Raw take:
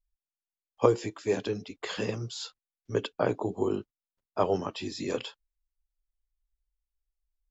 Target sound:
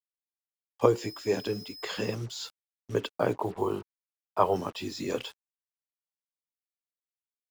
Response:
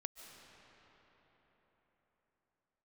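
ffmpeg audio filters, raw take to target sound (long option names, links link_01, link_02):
-filter_complex "[0:a]asettb=1/sr,asplit=3[link_01][link_02][link_03];[link_01]atrim=end=1.014[link_04];[link_02]atrim=start=1.01:end=2.15,asetpts=PTS-STARTPTS,afade=type=in:duration=0.004:curve=qsin,afade=type=out:start_time=1.136:duration=0.004:curve=qsin,aeval=exprs='val(0)+0.00562*sin(2*PI*5100*n/s)':channel_layout=same[link_05];[link_03]atrim=start=2.146[link_06];[link_04][link_05]acrossfade=duration=0.004:curve1=hsin:curve2=qsin[link_07];[link_07][link_06]acrossfade=duration=0.004:curve1=qsin:curve2=hsin,acrusher=bits=7:mix=0:aa=0.5,asettb=1/sr,asplit=3[link_08][link_09][link_10];[link_08]atrim=end=3.364[link_11];[link_09]atrim=start=3.36:end=4.56,asetpts=PTS-STARTPTS,afade=type=in:duration=0.004:curve=qsin,afade=type=out:start_time=1.196:duration=0.004:curve=qsin,equalizer=frequency=250:width_type=o:width=0.67:gain=-7,equalizer=frequency=1000:width_type=o:width=0.67:gain=8,equalizer=frequency=6300:width_type=o:width=0.67:gain=-6[link_12];[link_10]atrim=start=4.556[link_13];[link_11][link_12]acrossfade=duration=0.004:curve1=hsin:curve2=qsin[link_14];[link_14][link_13]acrossfade=duration=0.004:curve1=qsin:curve2=hsin"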